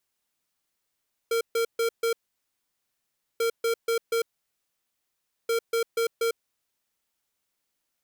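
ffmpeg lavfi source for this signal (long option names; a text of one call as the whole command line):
ffmpeg -f lavfi -i "aevalsrc='0.0596*(2*lt(mod(460*t,1),0.5)-1)*clip(min(mod(mod(t,2.09),0.24),0.1-mod(mod(t,2.09),0.24))/0.005,0,1)*lt(mod(t,2.09),0.96)':duration=6.27:sample_rate=44100" out.wav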